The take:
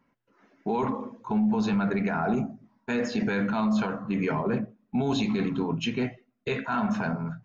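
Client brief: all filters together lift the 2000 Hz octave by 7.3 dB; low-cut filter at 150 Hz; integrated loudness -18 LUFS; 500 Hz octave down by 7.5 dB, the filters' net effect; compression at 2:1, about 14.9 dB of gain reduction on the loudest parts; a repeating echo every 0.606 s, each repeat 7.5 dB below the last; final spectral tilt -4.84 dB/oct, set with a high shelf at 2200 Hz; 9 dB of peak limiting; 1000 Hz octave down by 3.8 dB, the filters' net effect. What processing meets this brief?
HPF 150 Hz; bell 500 Hz -9 dB; bell 1000 Hz -7.5 dB; bell 2000 Hz +8.5 dB; high shelf 2200 Hz +8 dB; compressor 2:1, threshold -49 dBFS; limiter -33 dBFS; feedback echo 0.606 s, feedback 42%, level -7.5 dB; gain +24.5 dB

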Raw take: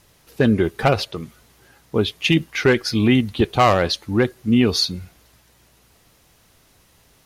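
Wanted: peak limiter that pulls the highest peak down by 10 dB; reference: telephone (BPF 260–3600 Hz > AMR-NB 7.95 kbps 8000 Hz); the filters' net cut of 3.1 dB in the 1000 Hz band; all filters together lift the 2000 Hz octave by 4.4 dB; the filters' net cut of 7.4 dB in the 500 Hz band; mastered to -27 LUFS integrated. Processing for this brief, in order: bell 500 Hz -9 dB; bell 1000 Hz -3 dB; bell 2000 Hz +7.5 dB; limiter -12.5 dBFS; BPF 260–3600 Hz; gain +0.5 dB; AMR-NB 7.95 kbps 8000 Hz

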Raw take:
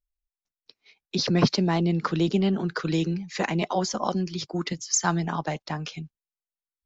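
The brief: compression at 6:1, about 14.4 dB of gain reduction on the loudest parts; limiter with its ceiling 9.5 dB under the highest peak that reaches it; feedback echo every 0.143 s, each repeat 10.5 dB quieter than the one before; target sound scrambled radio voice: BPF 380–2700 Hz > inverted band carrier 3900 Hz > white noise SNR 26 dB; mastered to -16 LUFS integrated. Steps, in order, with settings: compressor 6:1, threshold -30 dBFS; limiter -27 dBFS; BPF 380–2700 Hz; feedback echo 0.143 s, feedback 30%, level -10.5 dB; inverted band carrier 3900 Hz; white noise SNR 26 dB; gain +23 dB

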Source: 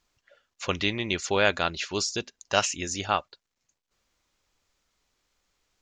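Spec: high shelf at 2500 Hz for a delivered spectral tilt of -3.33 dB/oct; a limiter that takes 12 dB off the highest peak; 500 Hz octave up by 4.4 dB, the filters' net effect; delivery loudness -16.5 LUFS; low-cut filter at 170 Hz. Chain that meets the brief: HPF 170 Hz; bell 500 Hz +6 dB; high shelf 2500 Hz -8.5 dB; gain +16 dB; limiter -1 dBFS

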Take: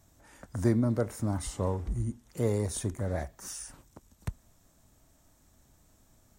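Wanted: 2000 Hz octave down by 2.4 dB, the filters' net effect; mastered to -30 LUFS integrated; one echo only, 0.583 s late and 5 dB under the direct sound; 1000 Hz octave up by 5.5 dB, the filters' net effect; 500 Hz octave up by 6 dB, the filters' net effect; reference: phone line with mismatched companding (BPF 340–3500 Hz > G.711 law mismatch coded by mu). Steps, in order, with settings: BPF 340–3500 Hz; bell 500 Hz +7.5 dB; bell 1000 Hz +5.5 dB; bell 2000 Hz -5.5 dB; echo 0.583 s -5 dB; G.711 law mismatch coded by mu

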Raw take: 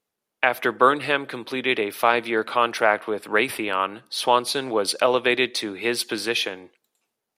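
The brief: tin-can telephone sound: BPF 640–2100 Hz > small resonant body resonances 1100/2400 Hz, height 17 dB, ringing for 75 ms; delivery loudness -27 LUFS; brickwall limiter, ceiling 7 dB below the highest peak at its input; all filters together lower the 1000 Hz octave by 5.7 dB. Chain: bell 1000 Hz -6 dB; limiter -12.5 dBFS; BPF 640–2100 Hz; small resonant body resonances 1100/2400 Hz, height 17 dB, ringing for 75 ms; gain +0.5 dB

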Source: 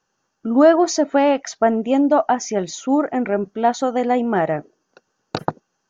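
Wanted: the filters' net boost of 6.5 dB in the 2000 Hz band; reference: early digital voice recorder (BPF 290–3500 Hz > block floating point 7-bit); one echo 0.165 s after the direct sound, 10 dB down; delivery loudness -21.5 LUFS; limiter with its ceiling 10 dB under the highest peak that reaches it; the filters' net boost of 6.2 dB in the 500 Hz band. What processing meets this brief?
bell 500 Hz +8 dB; bell 2000 Hz +8 dB; limiter -7 dBFS; BPF 290–3500 Hz; echo 0.165 s -10 dB; block floating point 7-bit; gain -4 dB

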